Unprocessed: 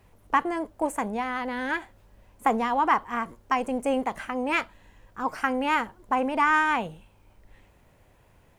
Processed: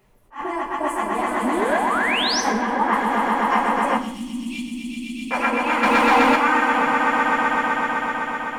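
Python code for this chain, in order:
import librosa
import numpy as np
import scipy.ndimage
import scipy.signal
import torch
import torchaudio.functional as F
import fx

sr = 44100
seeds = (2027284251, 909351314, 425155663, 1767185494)

y = fx.phase_scramble(x, sr, seeds[0], window_ms=50)
y = fx.echo_swell(y, sr, ms=127, loudest=5, wet_db=-4)
y = fx.spec_paint(y, sr, seeds[1], shape='rise', start_s=1.42, length_s=0.99, low_hz=210.0, high_hz=6400.0, level_db=-24.0)
y = fx.high_shelf(y, sr, hz=4100.0, db=-11.0, at=(2.52, 2.93))
y = fx.ellip_bandstop(y, sr, low_hz=270.0, high_hz=3100.0, order=3, stop_db=40, at=(3.97, 5.31))
y = fx.leveller(y, sr, passes=2, at=(5.83, 6.36))
y = fx.peak_eq(y, sr, hz=78.0, db=-7.5, octaves=1.8)
y = fx.rev_double_slope(y, sr, seeds[2], early_s=0.63, late_s=2.0, knee_db=-18, drr_db=6.0)
y = fx.attack_slew(y, sr, db_per_s=240.0)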